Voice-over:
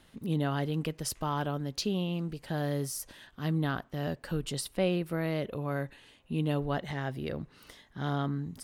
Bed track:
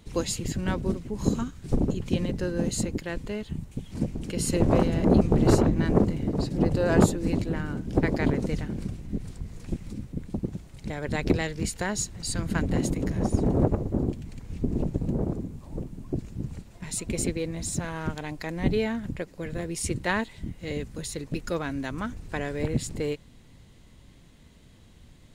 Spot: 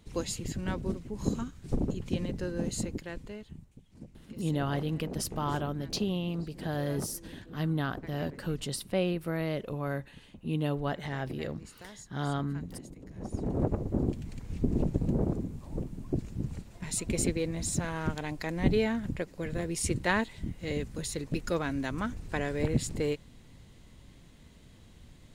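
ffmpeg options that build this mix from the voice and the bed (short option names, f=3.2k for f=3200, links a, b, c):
-filter_complex "[0:a]adelay=4150,volume=-0.5dB[a];[1:a]volume=13.5dB,afade=t=out:st=2.87:d=0.92:silence=0.188365,afade=t=in:st=13.08:d=1.15:silence=0.112202[b];[a][b]amix=inputs=2:normalize=0"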